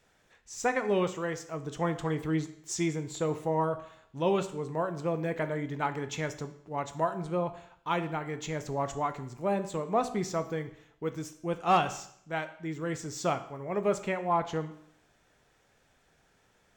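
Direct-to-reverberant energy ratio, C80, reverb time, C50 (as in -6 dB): 9.0 dB, 16.0 dB, 0.65 s, 13.0 dB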